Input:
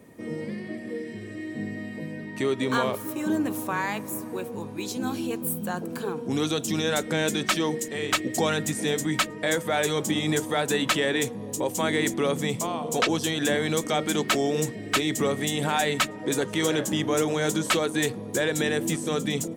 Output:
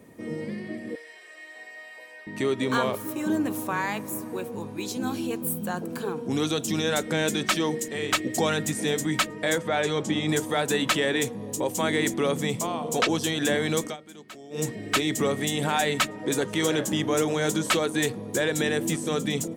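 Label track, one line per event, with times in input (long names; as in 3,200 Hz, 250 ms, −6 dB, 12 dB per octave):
0.950000	2.270000	high-pass filter 680 Hz 24 dB per octave
9.580000	10.290000	high-frequency loss of the air 76 metres
13.820000	14.650000	duck −20.5 dB, fades 0.15 s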